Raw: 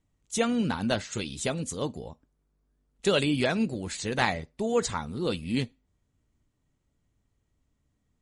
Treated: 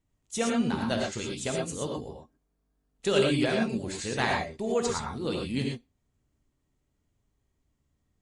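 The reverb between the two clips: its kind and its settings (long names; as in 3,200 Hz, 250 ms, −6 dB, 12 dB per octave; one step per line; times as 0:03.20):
reverb whose tail is shaped and stops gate 140 ms rising, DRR 0 dB
level −3.5 dB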